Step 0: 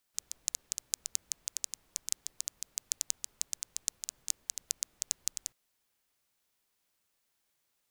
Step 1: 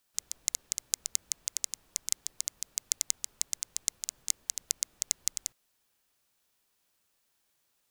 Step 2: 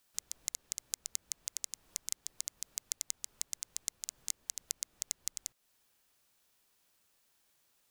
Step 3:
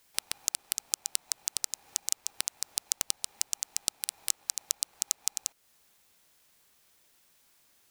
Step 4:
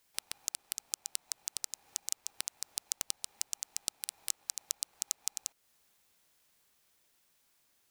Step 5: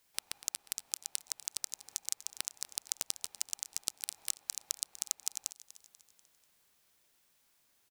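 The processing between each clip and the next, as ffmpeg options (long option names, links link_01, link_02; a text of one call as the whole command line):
ffmpeg -i in.wav -af "bandreject=frequency=2100:width=18,volume=3.5dB" out.wav
ffmpeg -i in.wav -af "acompressor=threshold=-41dB:ratio=2,volume=2dB" out.wav
ffmpeg -i in.wav -af "aeval=exprs='val(0)*sgn(sin(2*PI*810*n/s))':channel_layout=same,volume=7.5dB" out.wav
ffmpeg -i in.wav -af "dynaudnorm=framelen=300:gausssize=11:maxgain=11.5dB,volume=-6.5dB" out.wav
ffmpeg -i in.wav -af "aecho=1:1:244|488|732|976:0.15|0.0718|0.0345|0.0165" out.wav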